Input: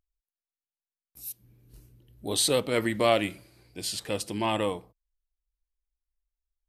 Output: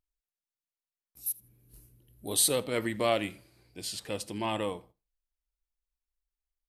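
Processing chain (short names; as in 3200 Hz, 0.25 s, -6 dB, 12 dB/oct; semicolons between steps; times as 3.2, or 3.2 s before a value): 1.26–2.52 bell 11000 Hz +13 dB 0.63 oct; feedback echo 81 ms, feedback 20%, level -23 dB; gain -4.5 dB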